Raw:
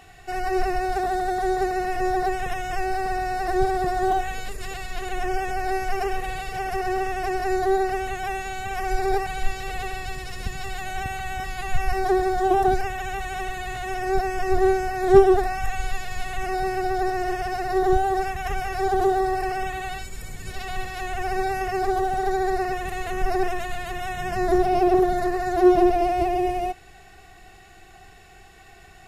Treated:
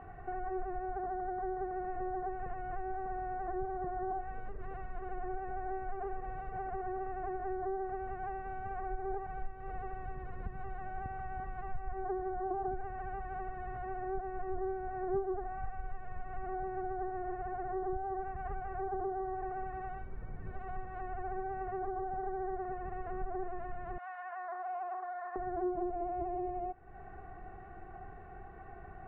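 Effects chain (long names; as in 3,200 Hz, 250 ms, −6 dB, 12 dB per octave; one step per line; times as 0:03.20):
0:23.98–0:25.36: high-pass filter 870 Hz 24 dB per octave
downward compressor 3 to 1, threshold −41 dBFS, peak gain reduction 23.5 dB
low-pass filter 1,400 Hz 24 dB per octave
level +1 dB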